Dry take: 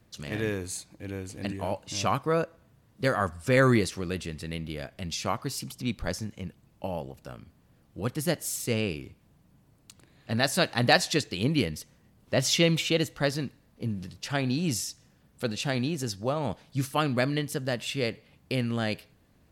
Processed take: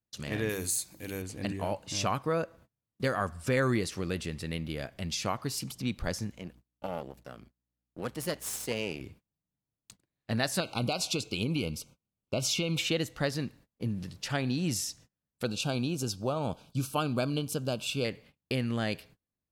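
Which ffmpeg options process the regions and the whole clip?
-filter_complex "[0:a]asettb=1/sr,asplit=3[s0][s1][s2];[s0]atrim=end=0.494[s3];[s1]atrim=start=0.49:end=1.22,asetpts=PTS-STARTPTS,afade=t=in:d=0.004:c=qsin,afade=t=out:st=0.726:d=0.004:c=qsin,bandreject=f=50:t=h:w=6,bandreject=f=100:t=h:w=6,bandreject=f=150:t=h:w=6,bandreject=f=200:t=h:w=6,bandreject=f=250:t=h:w=6,bandreject=f=300:t=h:w=6,bandreject=f=350:t=h:w=6,deesser=0.7,aemphasis=mode=production:type=75fm[s4];[s2]atrim=start=1.216[s5];[s3][s4]acrossfade=d=0.004:c1=hsin:c2=qsin[s6];[s6][s5]acrossfade=d=0.004:c1=qsin:c2=hsin,asettb=1/sr,asplit=3[s7][s8][s9];[s7]atrim=end=6.314[s10];[s8]atrim=start=6.31:end=9.01,asetpts=PTS-STARTPTS,afade=t=in:d=0.004:c=qsin,afade=t=out:st=2.696:d=0.004:c=qsin,aeval=exprs='if(lt(val(0),0),0.251*val(0),val(0))':c=same,highpass=150,aeval=exprs='val(0)+0.00126*(sin(2*PI*60*n/s)+sin(2*PI*2*60*n/s)/2+sin(2*PI*3*60*n/s)/3+sin(2*PI*4*60*n/s)/4+sin(2*PI*5*60*n/s)/5)':c=same[s11];[s9]atrim=start=9.006[s12];[s10][s11]acrossfade=d=0.004:c1=hsin:c2=qsin[s13];[s13][s12]acrossfade=d=0.004:c1=qsin:c2=hsin,asettb=1/sr,asplit=3[s14][s15][s16];[s14]atrim=end=10.604[s17];[s15]atrim=start=10.6:end=12.79,asetpts=PTS-STARTPTS,afade=t=in:d=0.004:c=qsin,afade=t=out:st=2.186:d=0.004:c=qsin,equalizer=f=2600:w=6:g=3,acompressor=threshold=0.0708:ratio=6:attack=3.2:release=140:knee=1:detection=peak,asuperstop=centerf=1800:order=20:qfactor=3[s18];[s16]atrim=start=12.786[s19];[s17][s18]acrossfade=d=0.004:c1=hsin:c2=qsin[s20];[s20][s19]acrossfade=d=0.004:c1=qsin:c2=hsin,asettb=1/sr,asplit=3[s21][s22][s23];[s21]atrim=end=15.454[s24];[s22]atrim=start=15.45:end=18.05,asetpts=PTS-STARTPTS,afade=t=in:d=0.004:c=qsin,afade=t=out:st=2.596:d=0.004:c=qsin,asuperstop=centerf=1900:order=8:qfactor=2.7,highshelf=f=11000:g=3[s25];[s23]atrim=start=18.046[s26];[s24][s25]acrossfade=d=0.004:c1=hsin:c2=qsin[s27];[s27][s26]acrossfade=d=0.004:c1=qsin:c2=hsin,agate=range=0.0316:threshold=0.00251:ratio=16:detection=peak,acompressor=threshold=0.0398:ratio=2"

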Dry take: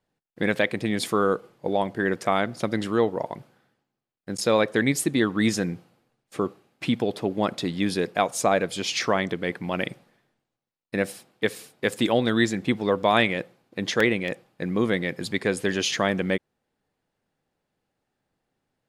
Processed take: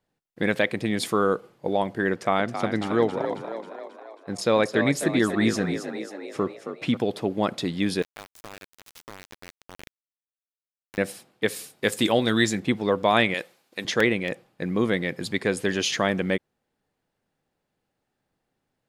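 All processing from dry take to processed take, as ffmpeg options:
-filter_complex "[0:a]asettb=1/sr,asplit=3[s0][s1][s2];[s0]atrim=end=2.124[s3];[s1]atrim=start=2.12:end=6.97,asetpts=PTS-STARTPTS,afade=t=in:d=0.004:c=qsin,afade=t=out:st=4.846:d=0.004:c=qsin,highshelf=f=7600:g=-9,asplit=8[s4][s5][s6][s7][s8][s9][s10][s11];[s5]adelay=270,afreqshift=49,volume=0.355[s12];[s6]adelay=540,afreqshift=98,volume=0.202[s13];[s7]adelay=810,afreqshift=147,volume=0.115[s14];[s8]adelay=1080,afreqshift=196,volume=0.0661[s15];[s9]adelay=1350,afreqshift=245,volume=0.0376[s16];[s10]adelay=1620,afreqshift=294,volume=0.0214[s17];[s11]adelay=1890,afreqshift=343,volume=0.0122[s18];[s4][s12][s13][s14][s15][s16][s17][s18]amix=inputs=8:normalize=0,atrim=end_sample=213885[s19];[s2]atrim=start=6.966[s20];[s3][s19]acrossfade=d=0.004:c1=hsin:c2=qsin[s21];[s21][s20]acrossfade=d=0.004:c1=qsin:c2=hsin,asettb=1/sr,asplit=3[s22][s23][s24];[s22]atrim=end=8.024[s25];[s23]atrim=start=8.02:end=10.98,asetpts=PTS-STARTPTS,afade=t=in:d=0.004:c=qsin,afade=t=out:st=2.956:d=0.004:c=qsin,lowshelf=f=240:t=q:w=1.5:g=-7.5,acompressor=threshold=0.00891:ratio=3:attack=3.2:release=140:knee=1:detection=peak,aeval=exprs='val(0)*gte(abs(val(0)),0.0251)':c=same[s26];[s24]atrim=start=10.976[s27];[s25][s26]acrossfade=d=0.004:c1=hsin:c2=qsin[s28];[s28][s27]acrossfade=d=0.004:c1=qsin:c2=hsin,asettb=1/sr,asplit=3[s29][s30][s31];[s29]atrim=end=11.484[s32];[s30]atrim=start=11.48:end=12.6,asetpts=PTS-STARTPTS,afade=t=in:d=0.004:c=qsin,afade=t=out:st=1.116:d=0.004:c=qsin,highshelf=f=4000:g=7,asplit=2[s33][s34];[s34]adelay=19,volume=0.2[s35];[s33][s35]amix=inputs=2:normalize=0,atrim=end_sample=49392[s36];[s31]atrim=start=12.596[s37];[s32][s36]acrossfade=d=0.004:c1=hsin:c2=qsin[s38];[s38][s37]acrossfade=d=0.004:c1=qsin:c2=hsin,asettb=1/sr,asplit=3[s39][s40][s41];[s39]atrim=end=13.344[s42];[s40]atrim=start=13.34:end=13.85,asetpts=PTS-STARTPTS,afade=t=in:d=0.004:c=qsin,afade=t=out:st=0.506:d=0.004:c=qsin,highpass=f=560:p=1,highshelf=f=2900:g=10.5[s43];[s41]atrim=start=13.846[s44];[s42][s43]acrossfade=d=0.004:c1=hsin:c2=qsin[s45];[s45][s44]acrossfade=d=0.004:c1=qsin:c2=hsin"

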